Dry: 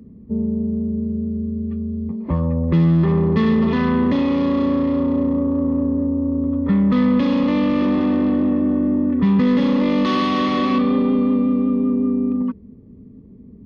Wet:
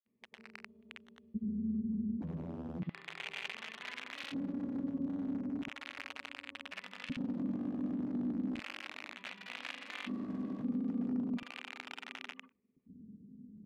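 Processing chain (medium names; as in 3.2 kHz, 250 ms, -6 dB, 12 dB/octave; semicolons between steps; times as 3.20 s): compression 16:1, threshold -19 dBFS, peak gain reduction 8.5 dB; integer overflow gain 16.5 dB; granulator, pitch spread up and down by 0 st; LFO band-pass square 0.35 Hz 210–2500 Hz; granulator, pitch spread up and down by 0 st; trim -6.5 dB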